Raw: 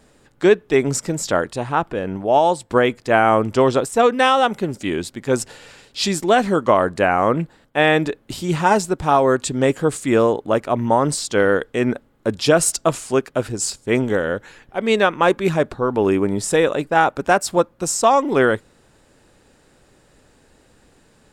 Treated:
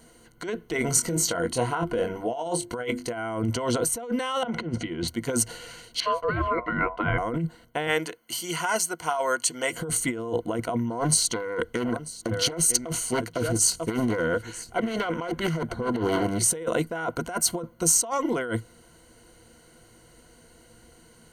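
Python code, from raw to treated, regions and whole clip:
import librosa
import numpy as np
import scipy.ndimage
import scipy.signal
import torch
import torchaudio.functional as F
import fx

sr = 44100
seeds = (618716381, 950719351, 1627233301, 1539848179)

y = fx.chain(x, sr, fx.hum_notches(base_hz=50, count=7),
    fx.doubler(ms=23.0, db=-7.0), at=(0.76, 3.14))
y = fx.chain(y, sr, fx.lowpass(hz=3100.0, slope=12),
    fx.over_compress(threshold_db=-31.0, ratio=-1.0), at=(4.43, 5.08))
y = fx.chain(y, sr, fx.ring_mod(carrier_hz=830.0),
    fx.air_absorb(metres=450.0), at=(6.0, 7.18))
y = fx.chain(y, sr, fx.highpass(hz=1300.0, slope=6),
    fx.notch(hz=3800.0, q=6.9), at=(7.87, 9.73))
y = fx.chain(y, sr, fx.echo_single(ms=942, db=-17.5),
    fx.doppler_dist(depth_ms=0.54), at=(10.9, 16.43))
y = fx.ripple_eq(y, sr, per_octave=1.9, db=14)
y = fx.over_compress(y, sr, threshold_db=-20.0, ratio=-1.0)
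y = fx.high_shelf(y, sr, hz=7700.0, db=9.0)
y = y * librosa.db_to_amplitude(-7.0)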